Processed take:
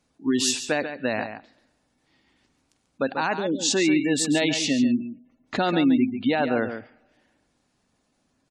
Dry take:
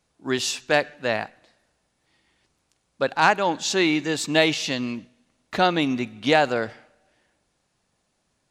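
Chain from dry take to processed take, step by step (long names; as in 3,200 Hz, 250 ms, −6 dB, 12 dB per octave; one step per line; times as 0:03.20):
parametric band 260 Hz +10 dB 0.43 octaves
brickwall limiter −13 dBFS, peak gain reduction 9.5 dB
time-frequency box erased 0:03.37–0:03.59, 590–2,900 Hz
dynamic equaliser 9,500 Hz, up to +6 dB, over −46 dBFS, Q 0.79
gate on every frequency bin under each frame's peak −25 dB strong
slap from a distant wall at 24 metres, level −9 dB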